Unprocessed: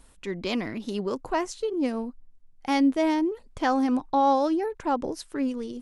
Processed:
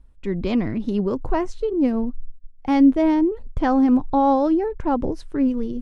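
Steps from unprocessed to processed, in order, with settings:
noise gate −48 dBFS, range −13 dB
RIAA equalisation playback
level +1.5 dB

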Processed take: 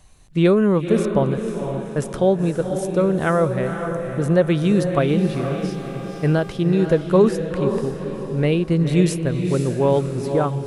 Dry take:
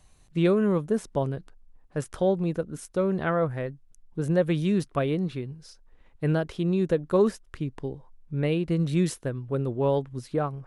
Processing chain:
0:05.08–0:06.51: hum with harmonics 400 Hz, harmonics 36, −46 dBFS −8 dB per octave
feedback delay with all-pass diffusion 501 ms, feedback 46%, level −6.5 dB
level +6.5 dB

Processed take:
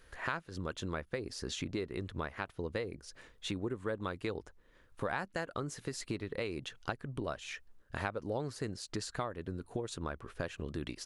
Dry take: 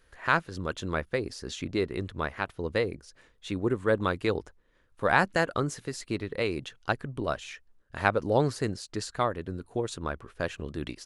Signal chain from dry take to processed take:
downward compressor 4 to 1, threshold −39 dBFS, peak gain reduction 18.5 dB
level +3 dB

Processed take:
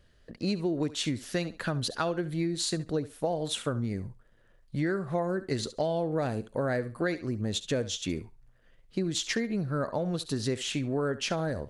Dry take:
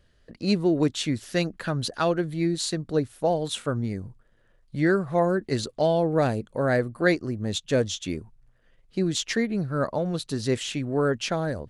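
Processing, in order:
feedback echo with a high-pass in the loop 69 ms, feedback 17%, high-pass 420 Hz, level −15.5 dB
downward compressor 6 to 1, threshold −26 dBFS, peak gain reduction 10.5 dB

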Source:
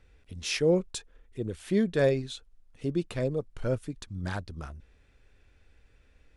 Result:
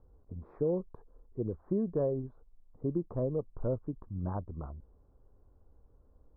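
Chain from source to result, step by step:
elliptic low-pass filter 1,100 Hz, stop band 60 dB
downward compressor 6 to 1, threshold −27 dBFS, peak gain reduction 8.5 dB

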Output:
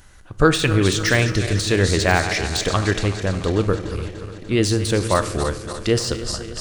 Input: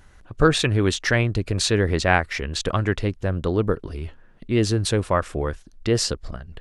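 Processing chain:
feedback delay that plays each chunk backwards 147 ms, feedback 79%, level −13 dB
de-essing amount 60%
high-shelf EQ 3,500 Hz +9.5 dB
dense smooth reverb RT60 0.83 s, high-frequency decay 0.85×, DRR 11.5 dB
level +1.5 dB

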